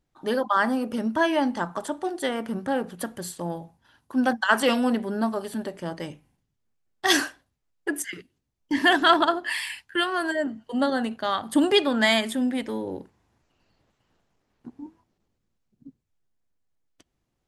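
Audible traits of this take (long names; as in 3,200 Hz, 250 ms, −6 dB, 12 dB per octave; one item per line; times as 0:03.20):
background noise floor −77 dBFS
spectral slope −3.5 dB per octave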